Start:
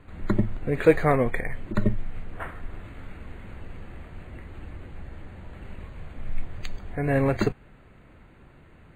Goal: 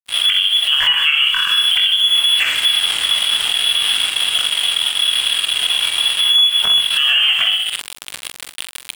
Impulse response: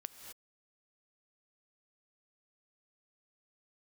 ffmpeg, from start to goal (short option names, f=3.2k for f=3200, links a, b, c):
-filter_complex "[0:a]aecho=1:1:63|126|189|252|315:0.355|0.167|0.0784|0.0368|0.0173,flanger=delay=18.5:depth=4.6:speed=0.27,bandreject=f=330.2:t=h:w=4,bandreject=f=660.4:t=h:w=4,acrossover=split=710[a][b];[a]asoftclip=type=tanh:threshold=-24dB[c];[c][b]amix=inputs=2:normalize=0,equalizer=f=620:w=1.5:g=9,lowpass=f=2.9k:t=q:w=0.5098,lowpass=f=2.9k:t=q:w=0.6013,lowpass=f=2.9k:t=q:w=0.9,lowpass=f=2.9k:t=q:w=2.563,afreqshift=-3400,lowshelf=f=150:g=12,aeval=exprs='sgn(val(0))*max(abs(val(0))-0.00596,0)':c=same,areverse,acompressor=mode=upward:threshold=-37dB:ratio=2.5,areverse,asplit=2[d][e];[e]adelay=46,volume=-9dB[f];[d][f]amix=inputs=2:normalize=0,acompressor=threshold=-38dB:ratio=10,alimiter=level_in=33dB:limit=-1dB:release=50:level=0:latency=1,volume=-4.5dB"